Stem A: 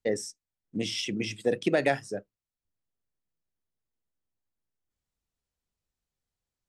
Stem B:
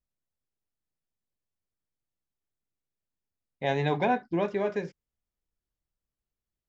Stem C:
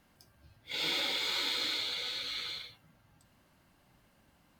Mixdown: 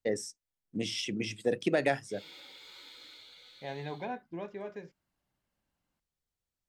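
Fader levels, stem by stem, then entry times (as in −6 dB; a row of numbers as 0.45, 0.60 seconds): −3.0, −12.5, −18.5 decibels; 0.00, 0.00, 1.40 seconds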